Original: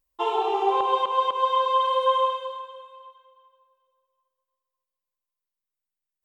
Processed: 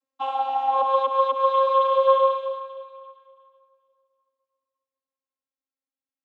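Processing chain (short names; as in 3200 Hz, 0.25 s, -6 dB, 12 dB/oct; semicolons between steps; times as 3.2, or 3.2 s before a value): vocoder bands 32, saw 268 Hz; gain +2.5 dB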